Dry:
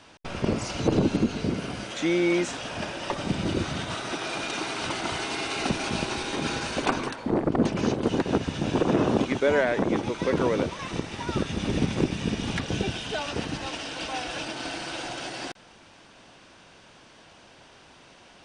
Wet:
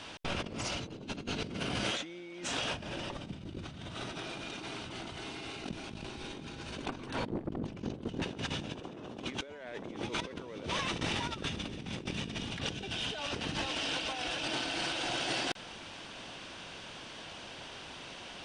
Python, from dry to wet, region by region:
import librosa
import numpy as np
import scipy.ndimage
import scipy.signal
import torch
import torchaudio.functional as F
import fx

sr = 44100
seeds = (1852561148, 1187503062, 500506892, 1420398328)

y = fx.chain(x, sr, fx.over_compress(threshold_db=-29.0, ratio=-0.5),
    fx.low_shelf(hz=320.0, db=11.5), at=(2.74, 8.22))
y = fx.peak_eq(y, sr, hz=3200.0, db=5.5, octaves=0.82)
y = fx.over_compress(y, sr, threshold_db=-36.0, ratio=-1.0)
y = y * librosa.db_to_amplitude(-4.0)